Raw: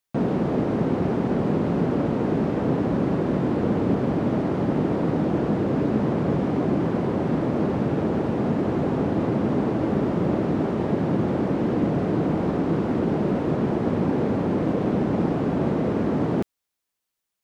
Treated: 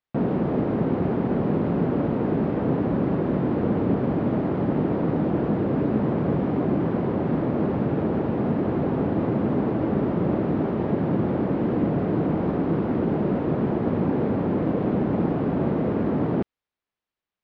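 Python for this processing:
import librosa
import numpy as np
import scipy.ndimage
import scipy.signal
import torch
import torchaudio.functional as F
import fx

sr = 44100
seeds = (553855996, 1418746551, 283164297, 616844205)

y = fx.air_absorb(x, sr, metres=250.0)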